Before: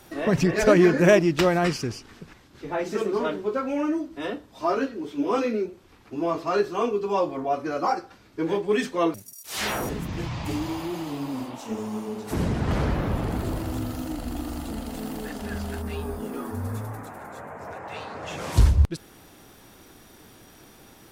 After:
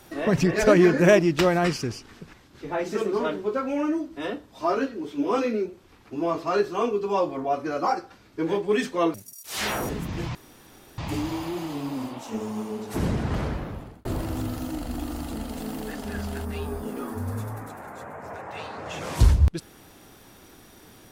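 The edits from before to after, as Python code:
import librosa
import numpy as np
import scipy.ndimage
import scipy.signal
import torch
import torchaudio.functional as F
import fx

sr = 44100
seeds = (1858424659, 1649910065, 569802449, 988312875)

y = fx.edit(x, sr, fx.insert_room_tone(at_s=10.35, length_s=0.63),
    fx.fade_out_span(start_s=12.48, length_s=0.94), tone=tone)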